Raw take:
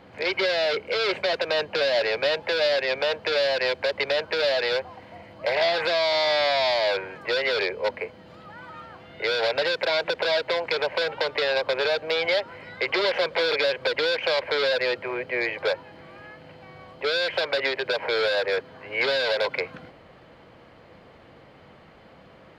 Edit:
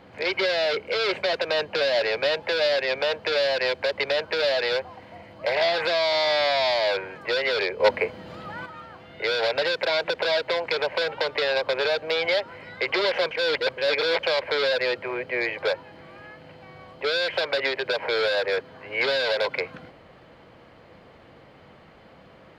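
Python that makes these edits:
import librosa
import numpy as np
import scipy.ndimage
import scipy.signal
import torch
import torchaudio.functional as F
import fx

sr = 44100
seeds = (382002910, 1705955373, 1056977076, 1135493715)

y = fx.edit(x, sr, fx.clip_gain(start_s=7.8, length_s=0.86, db=7.0),
    fx.reverse_span(start_s=13.31, length_s=0.92), tone=tone)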